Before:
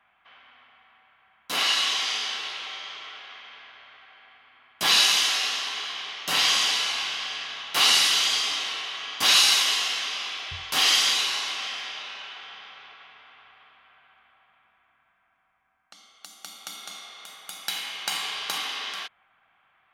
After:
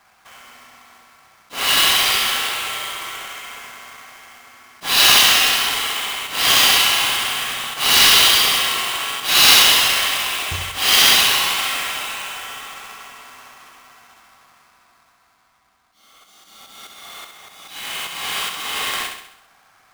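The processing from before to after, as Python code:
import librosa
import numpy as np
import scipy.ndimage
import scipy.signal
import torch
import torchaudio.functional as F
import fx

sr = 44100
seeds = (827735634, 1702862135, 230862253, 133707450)

y = fx.halfwave_hold(x, sr)
y = fx.auto_swell(y, sr, attack_ms=302.0)
y = fx.room_flutter(y, sr, wall_m=11.4, rt60_s=0.71)
y = y * 10.0 ** (5.5 / 20.0)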